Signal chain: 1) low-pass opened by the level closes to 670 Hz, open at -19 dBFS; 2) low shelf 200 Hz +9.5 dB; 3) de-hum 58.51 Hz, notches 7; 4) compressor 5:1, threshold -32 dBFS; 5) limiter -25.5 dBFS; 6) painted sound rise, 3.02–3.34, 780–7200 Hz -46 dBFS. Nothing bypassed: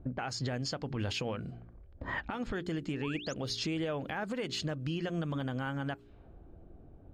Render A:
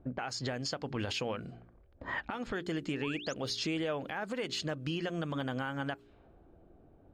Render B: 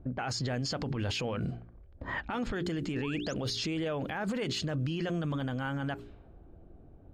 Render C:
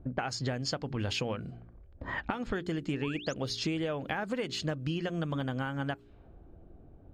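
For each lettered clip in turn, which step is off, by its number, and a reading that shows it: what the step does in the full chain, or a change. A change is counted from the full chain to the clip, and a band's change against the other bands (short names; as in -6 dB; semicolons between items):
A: 2, 125 Hz band -4.5 dB; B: 4, mean gain reduction 12.0 dB; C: 5, crest factor change +5.5 dB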